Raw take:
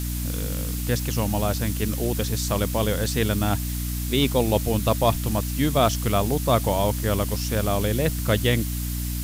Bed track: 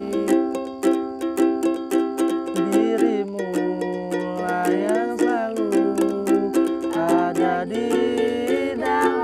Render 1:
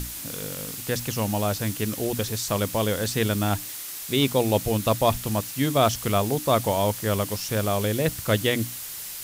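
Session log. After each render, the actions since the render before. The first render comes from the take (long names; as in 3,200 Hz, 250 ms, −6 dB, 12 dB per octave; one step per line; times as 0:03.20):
mains-hum notches 60/120/180/240/300 Hz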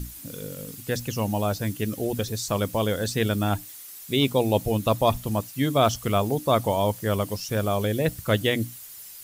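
broadband denoise 11 dB, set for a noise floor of −36 dBFS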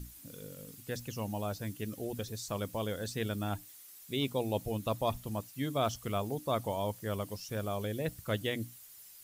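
level −11 dB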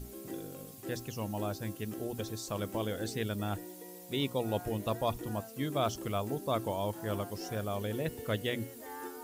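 mix in bed track −24.5 dB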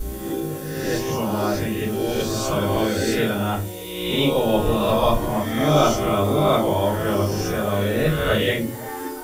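peak hold with a rise ahead of every peak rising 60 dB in 1.20 s
rectangular room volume 120 cubic metres, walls furnished, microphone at 4.6 metres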